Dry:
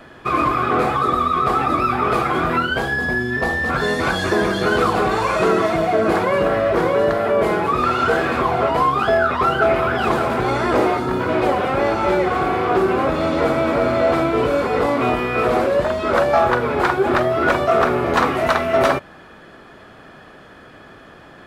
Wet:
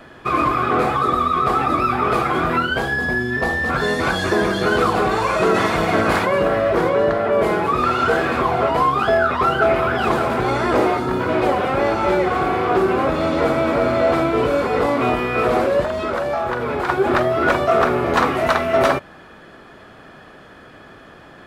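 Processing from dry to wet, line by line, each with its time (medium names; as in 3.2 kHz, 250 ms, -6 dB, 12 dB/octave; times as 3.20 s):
5.54–6.25 s: spectral peaks clipped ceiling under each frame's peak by 14 dB
6.88–7.31 s: low-pass 6 kHz -> 3.3 kHz 6 dB/octave
15.84–16.89 s: compression, threshold -18 dBFS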